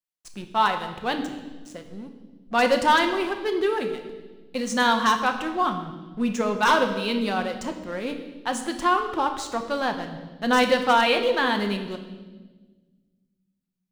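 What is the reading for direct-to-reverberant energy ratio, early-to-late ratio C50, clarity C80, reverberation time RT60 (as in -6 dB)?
5.0 dB, 8.5 dB, 10.5 dB, 1.3 s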